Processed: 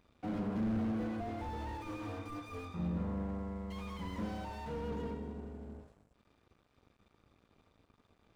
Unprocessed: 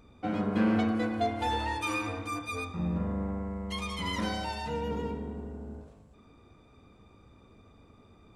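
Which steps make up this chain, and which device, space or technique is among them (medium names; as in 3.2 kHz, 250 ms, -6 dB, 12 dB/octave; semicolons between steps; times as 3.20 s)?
early transistor amplifier (crossover distortion -57 dBFS; slew-rate limiter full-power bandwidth 11 Hz); trim -4.5 dB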